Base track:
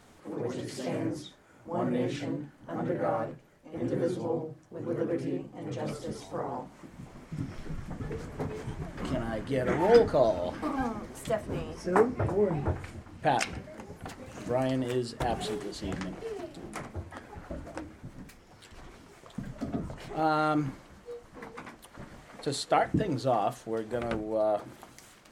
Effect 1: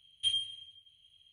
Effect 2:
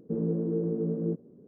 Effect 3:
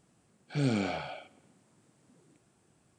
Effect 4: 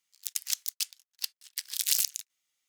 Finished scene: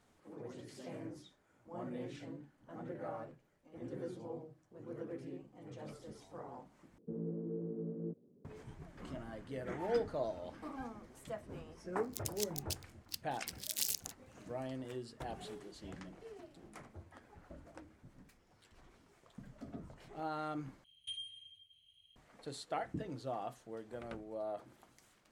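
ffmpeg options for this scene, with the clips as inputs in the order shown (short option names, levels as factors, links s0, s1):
-filter_complex "[0:a]volume=0.2[s0];[1:a]acompressor=threshold=0.0178:ratio=4:attack=0.89:release=416:knee=6:detection=rms[s1];[s0]asplit=3[s2][s3][s4];[s2]atrim=end=6.984[s5];[2:a]atrim=end=1.47,asetpts=PTS-STARTPTS,volume=0.251[s6];[s3]atrim=start=8.446:end=20.844[s7];[s1]atrim=end=1.32,asetpts=PTS-STARTPTS,volume=0.596[s8];[s4]atrim=start=22.156[s9];[4:a]atrim=end=2.68,asetpts=PTS-STARTPTS,volume=0.316,afade=t=in:d=0.004:c=hsin,afade=t=out:st=2.676:d=0.004:c=hsin,adelay=11900[s10];[s5][s6]acrossfade=d=0.004:c1=hsin:c2=hsin[s11];[s11][s7]acrossfade=d=0.004:c1=hsin:c2=hsin[s12];[s12][s8]acrossfade=d=0.004:c1=hsin:c2=hsin[s13];[s13][s9]acrossfade=d=0.004:c1=hsin:c2=hsin[s14];[s14][s10]amix=inputs=2:normalize=0"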